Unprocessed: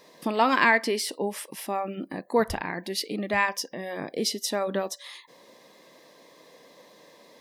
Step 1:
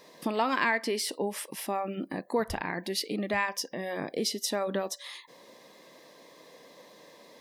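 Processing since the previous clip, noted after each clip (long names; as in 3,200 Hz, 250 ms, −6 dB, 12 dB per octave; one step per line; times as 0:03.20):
downward compressor 2 to 1, threshold −28 dBFS, peak gain reduction 7 dB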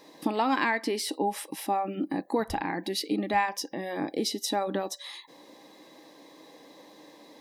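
hollow resonant body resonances 300/810/3,900 Hz, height 13 dB, ringing for 70 ms
level −1 dB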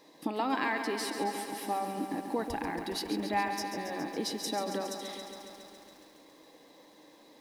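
feedback echo at a low word length 138 ms, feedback 80%, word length 9 bits, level −8 dB
level −5.5 dB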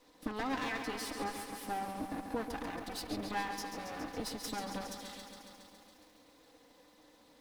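lower of the sound and its delayed copy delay 4 ms
level −4 dB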